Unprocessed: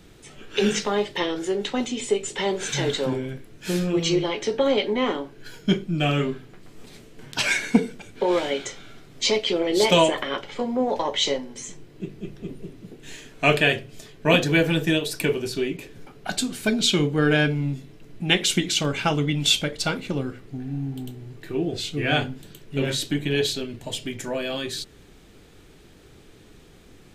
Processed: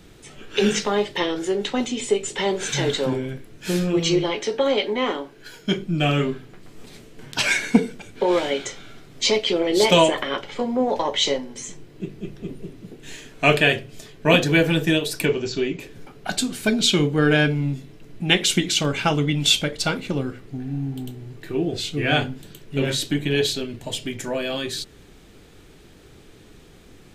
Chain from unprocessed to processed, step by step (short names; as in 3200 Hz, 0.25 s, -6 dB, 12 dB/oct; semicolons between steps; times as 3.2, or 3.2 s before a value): 4.41–5.78 low shelf 210 Hz -9.5 dB; 15.26–15.8 brick-wall FIR low-pass 7800 Hz; gain +2 dB